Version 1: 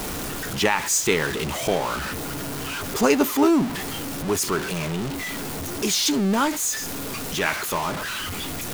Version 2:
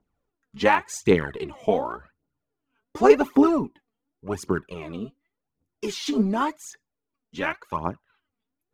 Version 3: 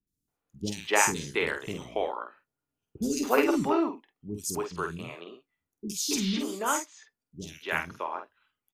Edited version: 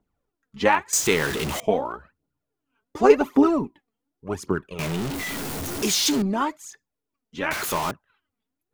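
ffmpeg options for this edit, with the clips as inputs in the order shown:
-filter_complex "[0:a]asplit=3[a][b][c];[1:a]asplit=4[d][e][f][g];[d]atrim=end=0.932[h];[a]atrim=start=0.928:end=1.602[i];[e]atrim=start=1.598:end=4.792[j];[b]atrim=start=4.788:end=6.222[k];[f]atrim=start=6.218:end=7.512[l];[c]atrim=start=7.508:end=7.912[m];[g]atrim=start=7.908[n];[h][i]acrossfade=d=0.004:c1=hsin:c2=hsin[o];[o][j]acrossfade=d=0.004:c1=hsin:c2=hsin[p];[p][k]acrossfade=d=0.004:c1=hsin:c2=hsin[q];[q][l]acrossfade=d=0.004:c1=hsin:c2=hsin[r];[r][m]acrossfade=d=0.004:c1=hsin:c2=hsin[s];[s][n]acrossfade=d=0.004:c1=hsin:c2=hsin"

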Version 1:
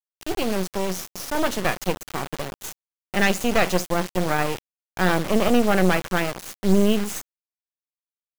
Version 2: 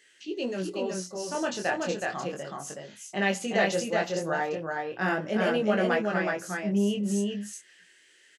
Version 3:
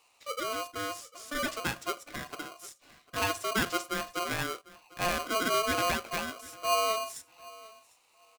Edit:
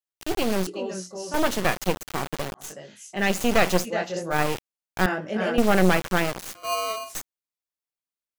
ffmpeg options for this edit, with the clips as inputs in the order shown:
-filter_complex "[1:a]asplit=4[a][b][c][d];[0:a]asplit=6[e][f][g][h][i][j];[e]atrim=end=0.672[k];[a]atrim=start=0.668:end=1.342[l];[f]atrim=start=1.338:end=2.78[m];[b]atrim=start=2.54:end=3.39[n];[g]atrim=start=3.15:end=3.88[o];[c]atrim=start=3.82:end=4.36[p];[h]atrim=start=4.3:end=5.062[q];[d]atrim=start=5.058:end=5.582[r];[i]atrim=start=5.578:end=6.552[s];[2:a]atrim=start=6.548:end=7.152[t];[j]atrim=start=7.148[u];[k][l]acrossfade=d=0.004:c1=hsin:c2=hsin[v];[v][m]acrossfade=d=0.004:c1=hsin:c2=hsin[w];[w][n]acrossfade=d=0.24:c1=tri:c2=tri[x];[x][o]acrossfade=d=0.24:c1=tri:c2=tri[y];[y][p]acrossfade=d=0.06:c1=tri:c2=tri[z];[z][q]acrossfade=d=0.06:c1=tri:c2=tri[aa];[aa][r]acrossfade=d=0.004:c1=hsin:c2=hsin[ab];[ab][s]acrossfade=d=0.004:c1=hsin:c2=hsin[ac];[ac][t]acrossfade=d=0.004:c1=hsin:c2=hsin[ad];[ad][u]acrossfade=d=0.004:c1=hsin:c2=hsin"

